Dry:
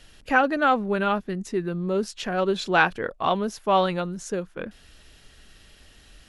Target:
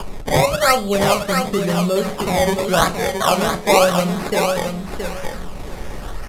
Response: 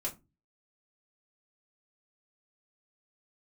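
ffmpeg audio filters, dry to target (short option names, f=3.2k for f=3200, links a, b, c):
-filter_complex "[0:a]aecho=1:1:1.7:0.94,bandreject=f=70.76:t=h:w=4,bandreject=f=141.52:t=h:w=4,bandreject=f=212.28:t=h:w=4,bandreject=f=283.04:t=h:w=4,bandreject=f=353.8:t=h:w=4,bandreject=f=424.56:t=h:w=4,bandreject=f=495.32:t=h:w=4,bandreject=f=566.08:t=h:w=4,bandreject=f=636.84:t=h:w=4,bandreject=f=707.6:t=h:w=4,bandreject=f=778.36:t=h:w=4,bandreject=f=849.12:t=h:w=4,bandreject=f=919.88:t=h:w=4,bandreject=f=990.64:t=h:w=4,bandreject=f=1.0614k:t=h:w=4,bandreject=f=1.13216k:t=h:w=4,acompressor=mode=upward:threshold=-19dB:ratio=2.5,acrusher=samples=22:mix=1:aa=0.000001:lfo=1:lforange=22:lforate=0.91,aecho=1:1:672|1344|2016:0.501|0.11|0.0243,asplit=2[a][b];[1:a]atrim=start_sample=2205,asetrate=24696,aresample=44100[c];[b][c]afir=irnorm=-1:irlink=0,volume=-12.5dB[d];[a][d]amix=inputs=2:normalize=0,aresample=32000,aresample=44100,volume=1dB"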